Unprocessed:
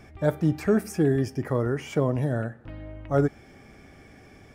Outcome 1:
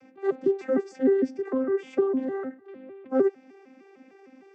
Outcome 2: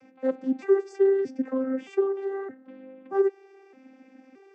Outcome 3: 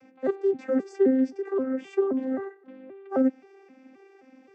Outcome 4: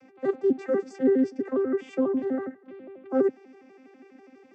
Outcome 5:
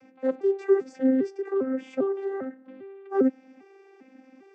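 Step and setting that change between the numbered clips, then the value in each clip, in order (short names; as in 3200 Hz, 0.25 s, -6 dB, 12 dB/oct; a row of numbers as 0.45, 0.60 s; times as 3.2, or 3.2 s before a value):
arpeggiated vocoder, a note every: 152, 621, 263, 82, 400 ms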